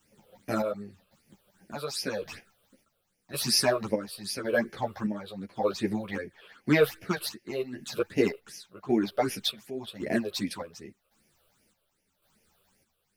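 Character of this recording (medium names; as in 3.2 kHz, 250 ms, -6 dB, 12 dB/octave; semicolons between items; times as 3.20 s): a quantiser's noise floor 12-bit, dither none; phasing stages 8, 2.6 Hz, lowest notch 240–1200 Hz; chopped level 0.9 Hz, depth 60%, duty 55%; a shimmering, thickened sound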